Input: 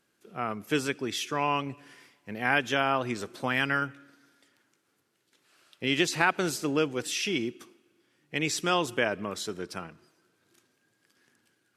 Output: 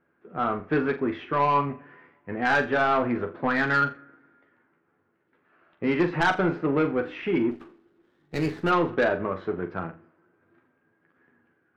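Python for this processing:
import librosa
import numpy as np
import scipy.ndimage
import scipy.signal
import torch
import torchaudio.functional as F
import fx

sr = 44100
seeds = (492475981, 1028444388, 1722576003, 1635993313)

p1 = fx.quant_dither(x, sr, seeds[0], bits=6, dither='none')
p2 = x + (p1 * 10.0 ** (-10.0 / 20.0))
p3 = scipy.signal.sosfilt(scipy.signal.butter(4, 1800.0, 'lowpass', fs=sr, output='sos'), p2)
p4 = fx.doubler(p3, sr, ms=12.0, db=-6)
p5 = 10.0 ** (-19.5 / 20.0) * np.tanh(p4 / 10.0 ** (-19.5 / 20.0))
p6 = p5 + fx.room_flutter(p5, sr, wall_m=7.2, rt60_s=0.26, dry=0)
p7 = fx.running_max(p6, sr, window=9, at=(7.5, 8.69), fade=0.02)
y = p7 * 10.0 ** (4.0 / 20.0)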